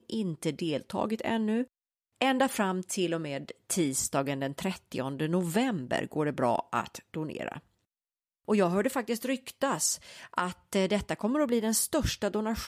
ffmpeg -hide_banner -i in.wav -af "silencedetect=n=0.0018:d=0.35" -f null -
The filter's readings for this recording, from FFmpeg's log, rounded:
silence_start: 1.68
silence_end: 2.16 | silence_duration: 0.49
silence_start: 7.61
silence_end: 8.45 | silence_duration: 0.84